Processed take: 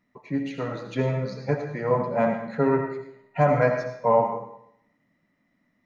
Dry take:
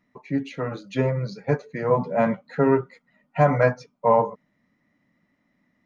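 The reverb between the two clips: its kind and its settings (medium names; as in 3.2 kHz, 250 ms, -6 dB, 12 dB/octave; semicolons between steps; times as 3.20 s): algorithmic reverb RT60 0.72 s, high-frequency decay 0.95×, pre-delay 40 ms, DRR 4.5 dB; trim -2.5 dB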